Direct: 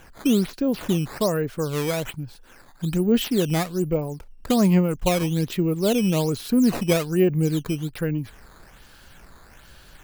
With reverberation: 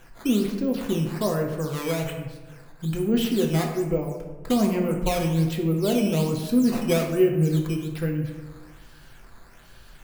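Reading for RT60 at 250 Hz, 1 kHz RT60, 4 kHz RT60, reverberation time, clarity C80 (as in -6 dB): 1.3 s, 1.1 s, 0.65 s, 1.2 s, 7.5 dB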